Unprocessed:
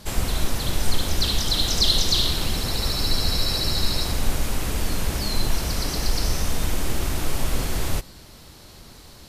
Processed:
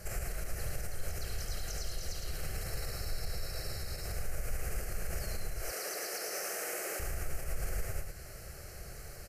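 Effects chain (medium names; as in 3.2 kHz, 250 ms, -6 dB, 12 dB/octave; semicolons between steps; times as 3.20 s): 5.60–7.00 s: high-pass 310 Hz 24 dB/octave; compression, threshold -27 dBFS, peak gain reduction 15 dB; peak limiter -26.5 dBFS, peak gain reduction 8.5 dB; static phaser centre 970 Hz, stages 6; delay 111 ms -4.5 dB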